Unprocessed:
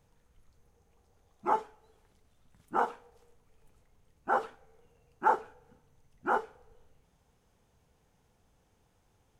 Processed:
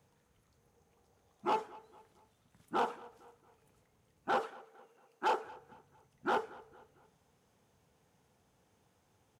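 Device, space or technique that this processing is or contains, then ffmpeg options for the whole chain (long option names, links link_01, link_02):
one-band saturation: -filter_complex "[0:a]acrossover=split=510|2700[link_01][link_02][link_03];[link_02]asoftclip=type=tanh:threshold=-29dB[link_04];[link_01][link_04][link_03]amix=inputs=3:normalize=0,asettb=1/sr,asplit=3[link_05][link_06][link_07];[link_05]atrim=end=4.404[link_08];[link_06]atrim=start=4.4:end=5.45,asetpts=PTS-STARTPTS,afade=type=in:duration=0.004:curve=qsin,afade=type=out:start_time=1.046:duration=0.004:curve=qsin,highpass=280[link_09];[link_07]atrim=start=5.446[link_10];[link_08][link_09]acrossfade=duration=0.004:curve1=hsin:curve2=qsin[link_11];[link_11][link_10]acrossfade=duration=0.004:curve1=qsin:curve2=hsin,highpass=100,asplit=2[link_12][link_13];[link_13]adelay=228,lowpass=frequency=4500:poles=1,volume=-21.5dB,asplit=2[link_14][link_15];[link_15]adelay=228,lowpass=frequency=4500:poles=1,volume=0.45,asplit=2[link_16][link_17];[link_17]adelay=228,lowpass=frequency=4500:poles=1,volume=0.45[link_18];[link_12][link_14][link_16][link_18]amix=inputs=4:normalize=0"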